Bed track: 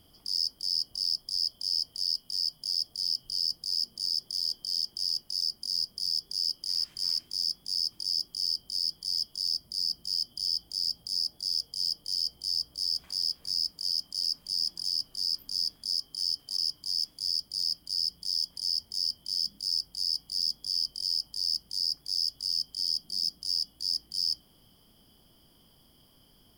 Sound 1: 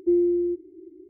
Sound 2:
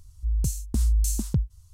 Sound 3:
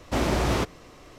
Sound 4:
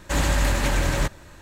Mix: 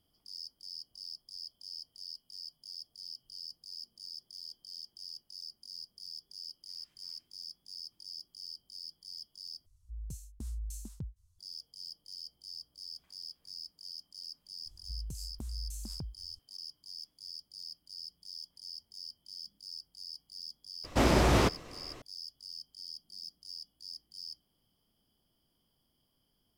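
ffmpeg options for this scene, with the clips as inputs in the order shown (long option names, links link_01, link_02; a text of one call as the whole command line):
ffmpeg -i bed.wav -i cue0.wav -i cue1.wav -i cue2.wav -filter_complex "[2:a]asplit=2[link_01][link_02];[0:a]volume=-15.5dB[link_03];[link_02]acompressor=threshold=-28dB:ratio=6:attack=3.2:release=140:knee=1:detection=peak[link_04];[link_03]asplit=2[link_05][link_06];[link_05]atrim=end=9.664[link_07];[link_01]atrim=end=1.73,asetpts=PTS-STARTPTS,volume=-17.5dB[link_08];[link_06]atrim=start=11.386[link_09];[link_04]atrim=end=1.73,asetpts=PTS-STARTPTS,volume=-9.5dB,afade=type=in:duration=0.004:curve=hsin,afade=type=out:start_time=1.726:duration=0.004:curve=hsin,adelay=14660[link_10];[3:a]atrim=end=1.18,asetpts=PTS-STARTPTS,volume=-0.5dB,afade=type=in:duration=0.004:curve=hsin,afade=type=out:start_time=1.176:duration=0.004:curve=hsin,adelay=919044S[link_11];[link_07][link_08]acrossfade=duration=0.004:curve1=hsin:curve2=hsin[link_12];[link_12][link_09]acrossfade=duration=0.004:curve1=hsin:curve2=hsin[link_13];[link_13][link_10][link_11]amix=inputs=3:normalize=0" out.wav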